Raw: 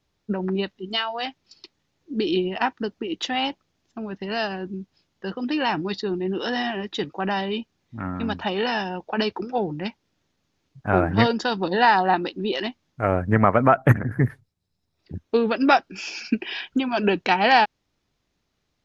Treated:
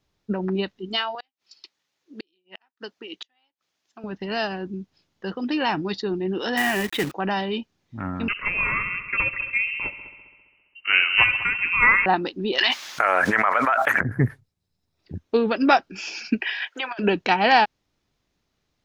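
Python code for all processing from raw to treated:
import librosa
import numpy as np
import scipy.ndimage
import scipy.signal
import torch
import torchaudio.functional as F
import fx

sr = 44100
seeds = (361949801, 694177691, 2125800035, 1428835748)

y = fx.chain(x, sr, fx.highpass(hz=1200.0, slope=6),
    fx.gate_flip(shuts_db=-23.0, range_db=-41), at=(1.15, 4.04))
y = fx.chain(y, sr, fx.lowpass_res(hz=2200.0, q=2.5),
    fx.quant_companded(bits=4),
    fx.env_flatten(amount_pct=50), at=(6.57, 7.12))
y = fx.chain(y, sr, fx.freq_invert(carrier_hz=2900),
    fx.echo_heads(ms=67, heads='all three', feedback_pct=52, wet_db=-17.5), at=(8.28, 12.06))
y = fx.chain(y, sr, fx.highpass(hz=1300.0, slope=12),
    fx.env_flatten(amount_pct=100), at=(12.58, 14.01))
y = fx.chain(y, sr, fx.highpass(hz=510.0, slope=24),
    fx.peak_eq(hz=1800.0, db=10.5, octaves=0.61),
    fx.over_compress(threshold_db=-28.0, ratio=-0.5), at=(16.41, 16.99))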